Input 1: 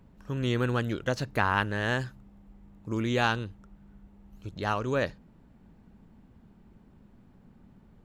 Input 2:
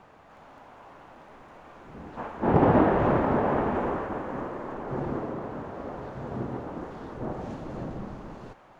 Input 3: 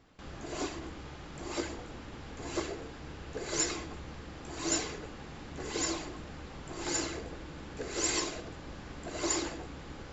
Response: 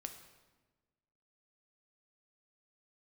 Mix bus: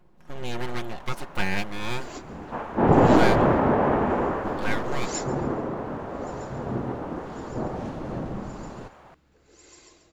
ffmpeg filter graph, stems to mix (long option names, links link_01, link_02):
-filter_complex "[0:a]equalizer=frequency=760:width=5.3:gain=13.5,aeval=exprs='abs(val(0))':channel_layout=same,aecho=1:1:5.6:0.59,volume=-2.5dB,asplit=2[link_01][link_02];[1:a]acontrast=74,adelay=350,volume=-3dB[link_03];[2:a]acrusher=bits=10:mix=0:aa=0.000001,adelay=1550,volume=-3dB,asplit=3[link_04][link_05][link_06];[link_05]volume=-20dB[link_07];[link_06]volume=-19.5dB[link_08];[link_02]apad=whole_len=515017[link_09];[link_04][link_09]sidechaingate=range=-33dB:threshold=-44dB:ratio=16:detection=peak[link_10];[3:a]atrim=start_sample=2205[link_11];[link_07][link_11]afir=irnorm=-1:irlink=0[link_12];[link_08]aecho=0:1:139|278|417|556|695:1|0.34|0.116|0.0393|0.0134[link_13];[link_01][link_03][link_10][link_12][link_13]amix=inputs=5:normalize=0"